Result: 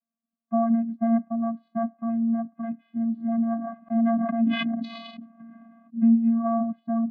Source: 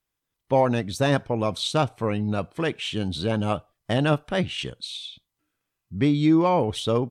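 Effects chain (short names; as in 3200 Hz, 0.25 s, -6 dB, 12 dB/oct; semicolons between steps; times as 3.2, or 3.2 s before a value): LPF 1300 Hz 24 dB/oct; vocoder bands 16, square 229 Hz; 3.55–5.97 sustainer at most 24 dB/s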